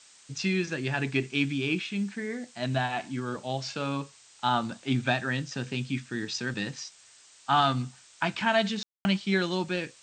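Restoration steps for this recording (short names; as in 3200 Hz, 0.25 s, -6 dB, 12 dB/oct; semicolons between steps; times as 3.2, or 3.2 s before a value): room tone fill 8.83–9.05; noise print and reduce 18 dB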